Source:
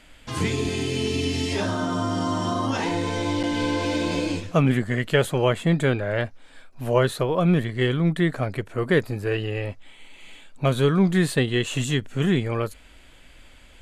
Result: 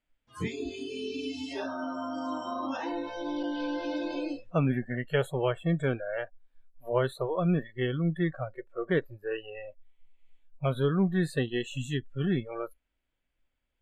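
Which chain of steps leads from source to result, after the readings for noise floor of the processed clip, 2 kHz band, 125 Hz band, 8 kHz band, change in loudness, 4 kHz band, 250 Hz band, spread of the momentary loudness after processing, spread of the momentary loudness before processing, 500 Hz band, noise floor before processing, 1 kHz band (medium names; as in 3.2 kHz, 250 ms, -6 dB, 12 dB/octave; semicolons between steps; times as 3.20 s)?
-80 dBFS, -9.0 dB, -8.5 dB, under -15 dB, -8.0 dB, -11.5 dB, -7.5 dB, 10 LU, 7 LU, -7.0 dB, -50 dBFS, -8.0 dB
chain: spectral noise reduction 25 dB; treble shelf 3.7 kHz -8.5 dB; trim -6.5 dB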